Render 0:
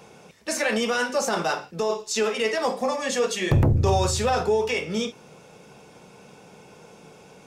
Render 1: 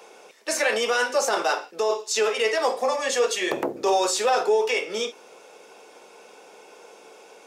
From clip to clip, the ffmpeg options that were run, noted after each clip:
ffmpeg -i in.wav -af "highpass=frequency=340:width=0.5412,highpass=frequency=340:width=1.3066,volume=2dB" out.wav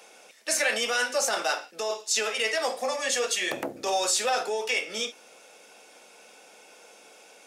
ffmpeg -i in.wav -af "equalizer=frequency=160:width_type=o:width=0.67:gain=-4,equalizer=frequency=400:width_type=o:width=0.67:gain=-11,equalizer=frequency=1000:width_type=o:width=0.67:gain=-8,equalizer=frequency=10000:width_type=o:width=0.67:gain=4" out.wav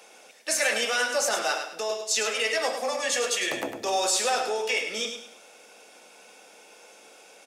ffmpeg -i in.wav -af "aecho=1:1:103|206|309|412:0.422|0.139|0.0459|0.0152" out.wav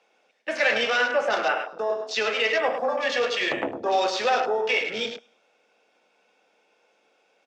ffmpeg -i in.wav -af "lowpass=3700,afwtdn=0.0141,volume=4dB" out.wav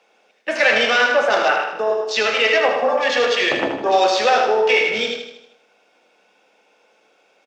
ffmpeg -i in.wav -af "aecho=1:1:78|156|234|312|390|468:0.447|0.228|0.116|0.0593|0.0302|0.0154,volume=6dB" out.wav

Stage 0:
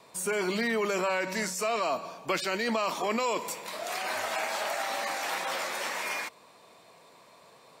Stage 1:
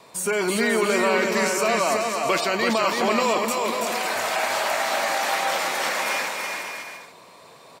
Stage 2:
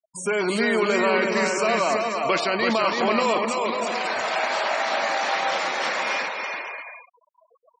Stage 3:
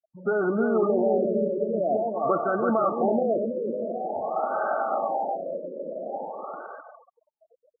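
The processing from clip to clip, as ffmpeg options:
ffmpeg -i in.wav -af "aecho=1:1:330|544.5|683.9|774.6|833.5:0.631|0.398|0.251|0.158|0.1,volume=6dB" out.wav
ffmpeg -i in.wav -af "lowpass=7200,afftfilt=real='re*gte(hypot(re,im),0.0251)':imag='im*gte(hypot(re,im),0.0251)':win_size=1024:overlap=0.75" out.wav
ffmpeg -i in.wav -af "asuperstop=centerf=990:order=8:qfactor=5.1,afftfilt=real='re*lt(b*sr/1024,600*pow(1600/600,0.5+0.5*sin(2*PI*0.48*pts/sr)))':imag='im*lt(b*sr/1024,600*pow(1600/600,0.5+0.5*sin(2*PI*0.48*pts/sr)))':win_size=1024:overlap=0.75" out.wav

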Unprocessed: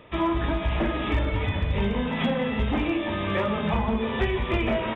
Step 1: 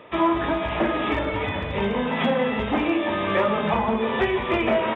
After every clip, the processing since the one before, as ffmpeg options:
ffmpeg -i in.wav -af "highpass=frequency=480:poles=1,highshelf=frequency=2100:gain=-9,volume=8.5dB" out.wav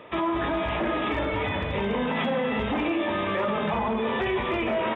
ffmpeg -i in.wav -af "alimiter=limit=-18.5dB:level=0:latency=1:release=21" out.wav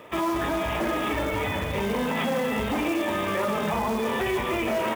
ffmpeg -i in.wav -af "acrusher=bits=4:mode=log:mix=0:aa=0.000001" out.wav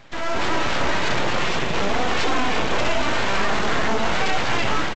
ffmpeg -i in.wav -af "dynaudnorm=framelen=200:gausssize=3:maxgain=8dB,aresample=16000,aeval=exprs='abs(val(0))':channel_layout=same,aresample=44100" out.wav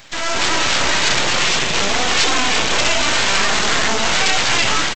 ffmpeg -i in.wav -af "crystalizer=i=6.5:c=0" out.wav

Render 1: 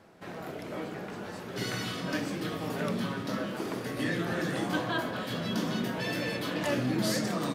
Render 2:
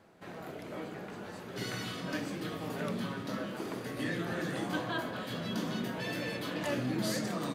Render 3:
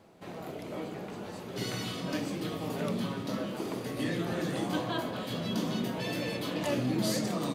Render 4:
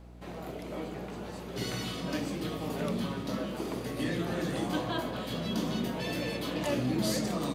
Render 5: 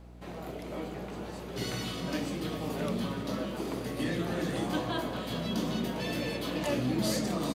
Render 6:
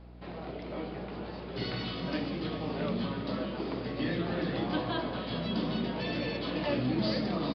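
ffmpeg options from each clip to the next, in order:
ffmpeg -i in.wav -af "bandreject=frequency=5400:width=17,volume=-4dB" out.wav
ffmpeg -i in.wav -af "equalizer=frequency=1600:width_type=o:width=0.69:gain=-7,volume=3.5dB" out.wav
ffmpeg -i in.wav -af "aeval=exprs='val(0)+0.00355*(sin(2*PI*60*n/s)+sin(2*PI*2*60*n/s)/2+sin(2*PI*3*60*n/s)/3+sin(2*PI*4*60*n/s)/4+sin(2*PI*5*60*n/s)/5)':channel_layout=same" out.wav
ffmpeg -i in.wav -af "aecho=1:1:402:0.224" out.wav
ffmpeg -i in.wav -af "aresample=11025,aresample=44100" out.wav

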